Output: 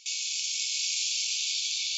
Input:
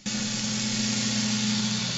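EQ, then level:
linear-phase brick-wall high-pass 2,200 Hz
0.0 dB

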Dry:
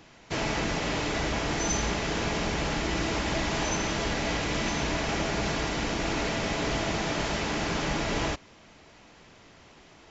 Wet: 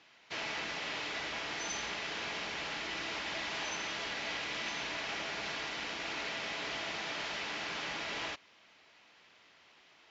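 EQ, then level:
resonant band-pass 3,600 Hz, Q 0.77
high-frequency loss of the air 61 metres
spectral tilt −1.5 dB per octave
0.0 dB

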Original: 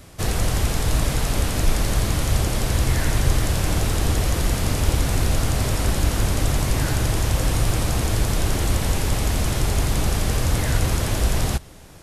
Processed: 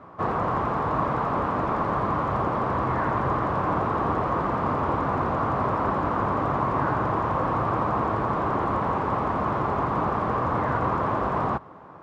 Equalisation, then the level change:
high-pass filter 170 Hz 12 dB per octave
low-pass with resonance 1,100 Hz, resonance Q 4.5
0.0 dB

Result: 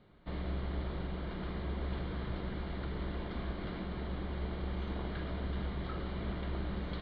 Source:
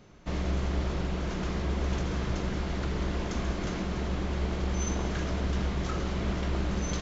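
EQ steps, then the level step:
Butterworth low-pass 4,300 Hz 72 dB per octave
notch filter 2,600 Hz, Q 8.3
−7.5 dB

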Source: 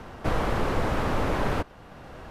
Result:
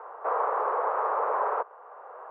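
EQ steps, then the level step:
elliptic high-pass filter 440 Hz, stop band 50 dB
transistor ladder low-pass 1,300 Hz, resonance 50%
high-frequency loss of the air 54 metres
+9.0 dB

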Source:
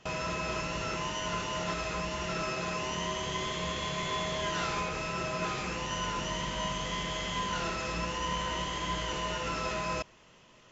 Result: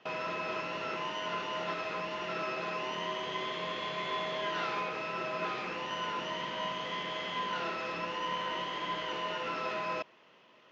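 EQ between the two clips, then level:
band-pass filter 280–5,700 Hz
high-frequency loss of the air 250 metres
high-shelf EQ 4,000 Hz +7.5 dB
0.0 dB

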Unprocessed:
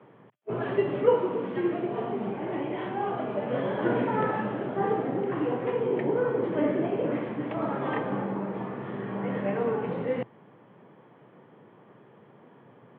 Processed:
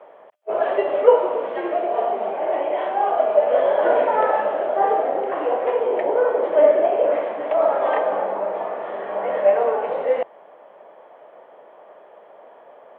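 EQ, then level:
high-pass with resonance 620 Hz, resonance Q 4.9
+4.5 dB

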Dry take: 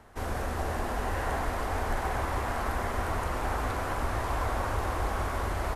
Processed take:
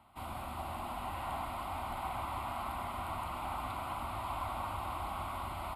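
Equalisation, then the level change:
high-pass filter 180 Hz 6 dB per octave
phaser with its sweep stopped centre 1,700 Hz, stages 6
−3.5 dB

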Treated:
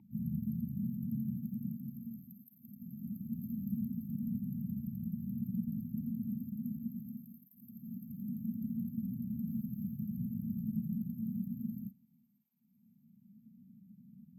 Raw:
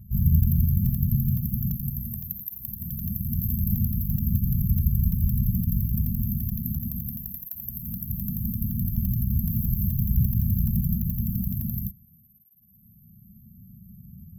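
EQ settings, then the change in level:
formant filter u
high-pass filter 210 Hz 12 dB per octave
+12.5 dB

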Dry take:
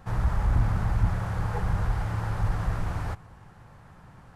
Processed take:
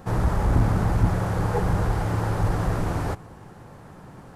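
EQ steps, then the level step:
parametric band 350 Hz +13 dB 2.4 octaves
high-shelf EQ 3,700 Hz +10 dB
0.0 dB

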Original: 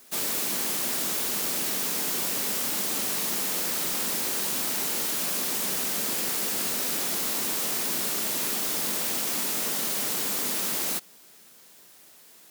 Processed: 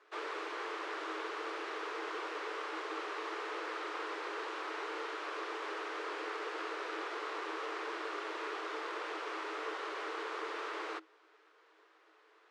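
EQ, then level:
Chebyshev high-pass with heavy ripple 310 Hz, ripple 9 dB
low-pass filter 2,500 Hz 12 dB per octave
high-frequency loss of the air 58 metres
+2.0 dB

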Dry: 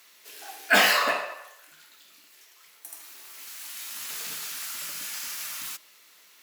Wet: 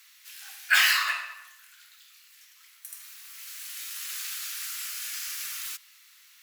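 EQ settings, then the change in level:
high-pass filter 1,300 Hz 24 dB per octave
0.0 dB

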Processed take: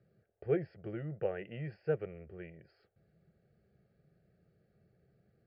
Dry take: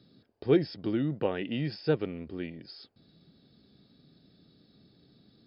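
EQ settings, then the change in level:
Butterworth low-pass 4,000 Hz 36 dB per octave
high-shelf EQ 2,100 Hz −7.5 dB
phaser with its sweep stopped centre 1,000 Hz, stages 6
−3.0 dB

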